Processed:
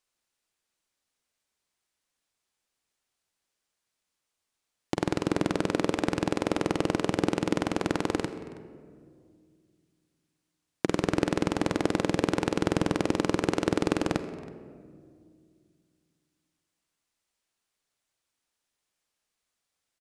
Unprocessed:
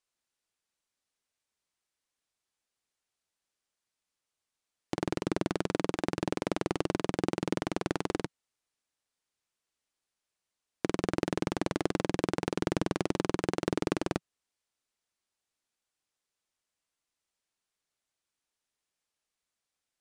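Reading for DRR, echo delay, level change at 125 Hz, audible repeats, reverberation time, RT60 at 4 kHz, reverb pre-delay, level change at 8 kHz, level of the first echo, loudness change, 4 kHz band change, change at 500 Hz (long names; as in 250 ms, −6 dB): 10.5 dB, 323 ms, +4.0 dB, 1, 2.1 s, 0.90 s, 36 ms, +4.0 dB, −21.0 dB, +4.5 dB, +4.5 dB, +4.0 dB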